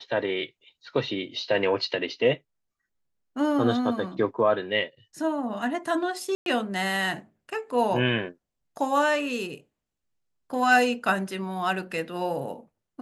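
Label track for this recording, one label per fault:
6.350000	6.460000	gap 0.112 s

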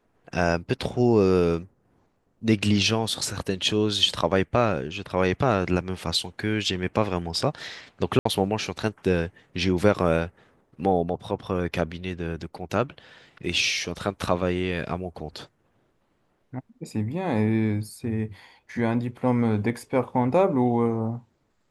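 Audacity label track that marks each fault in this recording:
8.190000	8.250000	gap 64 ms

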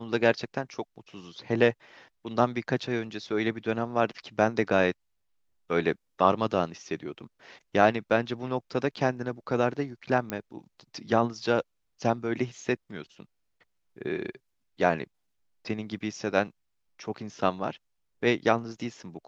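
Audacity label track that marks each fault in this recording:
10.300000	10.300000	pop -16 dBFS

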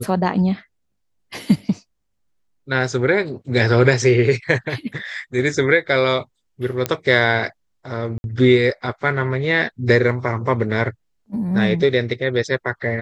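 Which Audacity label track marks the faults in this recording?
6.860000	6.860000	pop -5 dBFS
8.180000	8.240000	gap 61 ms

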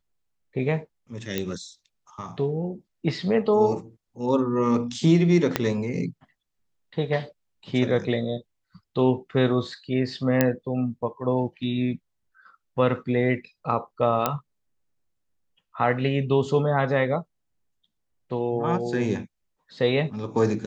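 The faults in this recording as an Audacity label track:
1.380000	1.380000	pop -12 dBFS
5.560000	5.560000	pop -6 dBFS
10.410000	10.410000	pop -5 dBFS
14.260000	14.260000	pop -7 dBFS

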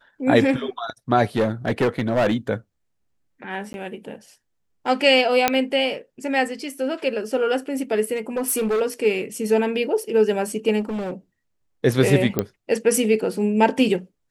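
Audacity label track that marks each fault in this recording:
1.360000	2.350000	clipped -15 dBFS
3.730000	3.740000	gap 11 ms
5.480000	5.480000	pop -1 dBFS
8.160000	8.820000	clipped -18.5 dBFS
10.800000	11.130000	clipped -24 dBFS
12.390000	12.390000	pop -7 dBFS

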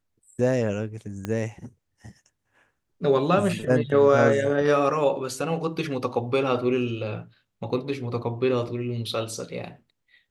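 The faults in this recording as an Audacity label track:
1.250000	1.250000	pop -16 dBFS

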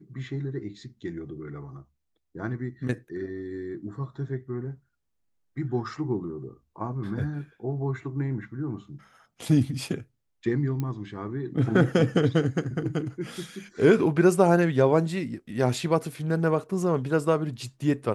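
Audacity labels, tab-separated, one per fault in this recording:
10.800000	10.800000	pop -18 dBFS

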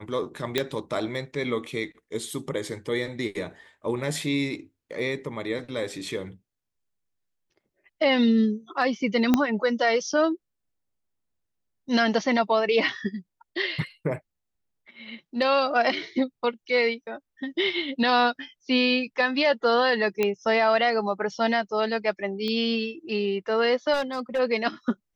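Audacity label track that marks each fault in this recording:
0.580000	0.580000	pop -9 dBFS
9.340000	9.340000	pop -7 dBFS
20.230000	20.230000	pop -11 dBFS
22.480000	22.480000	pop -19 dBFS
23.930000	24.400000	clipped -22 dBFS

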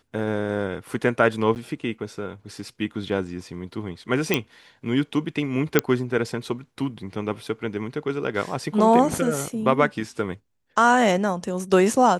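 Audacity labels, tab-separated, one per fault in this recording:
1.550000	1.560000	gap 9.8 ms
4.340000	4.340000	pop -5 dBFS
5.790000	5.790000	pop -2 dBFS

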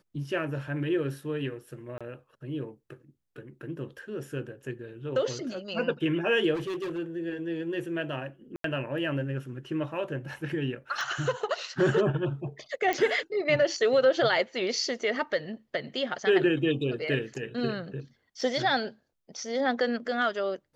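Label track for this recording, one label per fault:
1.980000	2.010000	gap 26 ms
6.540000	6.990000	clipped -30 dBFS
8.560000	8.640000	gap 83 ms
11.010000	11.010000	pop -23 dBFS
12.930000	12.930000	pop -15 dBFS
18.410000	18.410000	gap 4.2 ms

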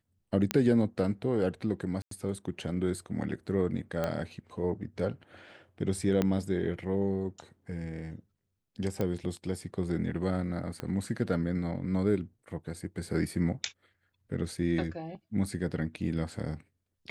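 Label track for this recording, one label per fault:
0.510000	0.510000	pop -11 dBFS
2.020000	2.110000	gap 93 ms
4.040000	4.040000	pop -18 dBFS
6.220000	6.220000	pop -14 dBFS
9.010000	9.010000	pop -19 dBFS
10.800000	10.800000	pop -22 dBFS

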